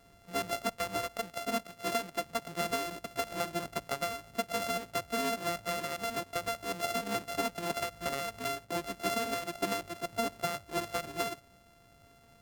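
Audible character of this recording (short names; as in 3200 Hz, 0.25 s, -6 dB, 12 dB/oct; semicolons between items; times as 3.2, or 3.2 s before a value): a buzz of ramps at a fixed pitch in blocks of 64 samples; Vorbis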